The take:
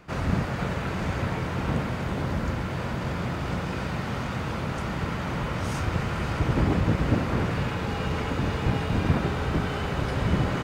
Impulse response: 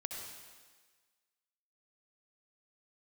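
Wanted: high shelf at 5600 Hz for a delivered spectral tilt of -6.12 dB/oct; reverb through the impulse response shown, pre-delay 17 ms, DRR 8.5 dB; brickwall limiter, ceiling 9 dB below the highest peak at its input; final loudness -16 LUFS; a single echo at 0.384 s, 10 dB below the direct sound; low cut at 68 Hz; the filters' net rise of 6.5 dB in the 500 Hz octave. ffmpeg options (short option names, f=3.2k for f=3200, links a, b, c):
-filter_complex "[0:a]highpass=68,equalizer=f=500:t=o:g=8,highshelf=f=5.6k:g=-6,alimiter=limit=-16.5dB:level=0:latency=1,aecho=1:1:384:0.316,asplit=2[a][b];[1:a]atrim=start_sample=2205,adelay=17[c];[b][c]afir=irnorm=-1:irlink=0,volume=-8.5dB[d];[a][d]amix=inputs=2:normalize=0,volume=10.5dB"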